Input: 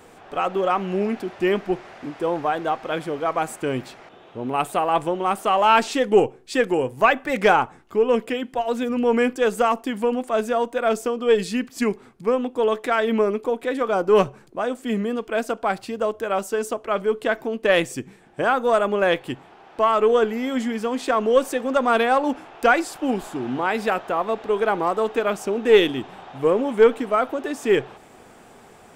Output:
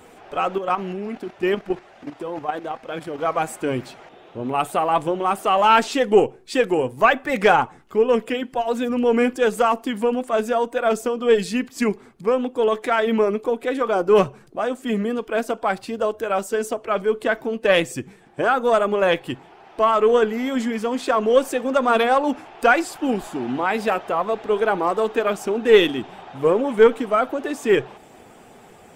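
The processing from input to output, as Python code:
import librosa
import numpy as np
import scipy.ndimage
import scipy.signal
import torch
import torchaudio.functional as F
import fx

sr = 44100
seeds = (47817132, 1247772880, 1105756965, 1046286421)

y = fx.spec_quant(x, sr, step_db=15)
y = fx.level_steps(y, sr, step_db=10, at=(0.58, 3.19))
y = y * librosa.db_to_amplitude(1.5)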